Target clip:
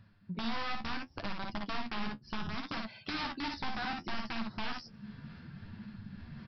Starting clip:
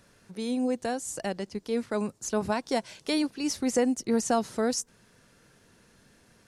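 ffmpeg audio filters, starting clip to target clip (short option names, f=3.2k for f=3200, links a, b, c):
-af "afftdn=nr=21:nf=-46,alimiter=limit=-24dB:level=0:latency=1:release=14,bandreject=f=60:t=h:w=6,bandreject=f=120:t=h:w=6,aresample=11025,aeval=exprs='(mod(22.4*val(0)+1,2)-1)/22.4':c=same,aresample=44100,equalizer=f=480:t=o:w=0.86:g=-14.5,aecho=1:1:43|57:0.178|0.631,areverse,acompressor=mode=upward:threshold=-42dB:ratio=2.5,areverse,highshelf=f=2.2k:g=-8,acompressor=threshold=-53dB:ratio=2.5,flanger=delay=9:depth=5.3:regen=41:speed=0.68:shape=sinusoidal,volume=15.5dB"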